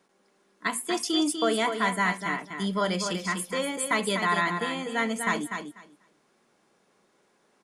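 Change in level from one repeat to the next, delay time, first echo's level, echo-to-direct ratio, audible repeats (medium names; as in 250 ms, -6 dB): -16.0 dB, 246 ms, -7.0 dB, -7.0 dB, 2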